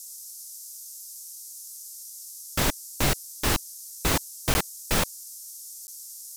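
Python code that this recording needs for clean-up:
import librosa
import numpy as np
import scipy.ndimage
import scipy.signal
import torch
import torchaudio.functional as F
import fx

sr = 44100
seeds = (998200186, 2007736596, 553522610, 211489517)

y = fx.fix_interpolate(x, sr, at_s=(4.54, 5.87), length_ms=10.0)
y = fx.noise_reduce(y, sr, print_start_s=5.15, print_end_s=5.65, reduce_db=30.0)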